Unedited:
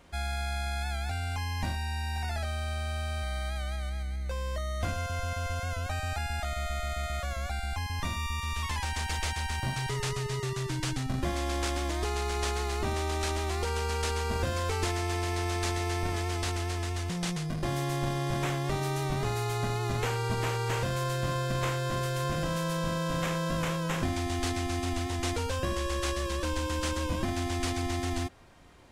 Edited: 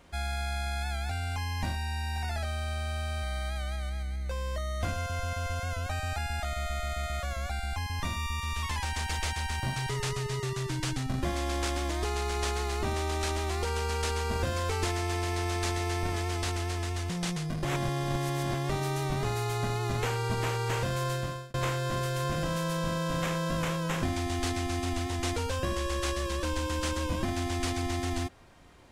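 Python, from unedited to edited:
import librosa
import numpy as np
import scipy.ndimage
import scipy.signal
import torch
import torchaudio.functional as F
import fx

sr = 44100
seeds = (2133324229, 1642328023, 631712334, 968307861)

y = fx.edit(x, sr, fx.reverse_span(start_s=17.65, length_s=0.89),
    fx.fade_out_span(start_s=21.13, length_s=0.41), tone=tone)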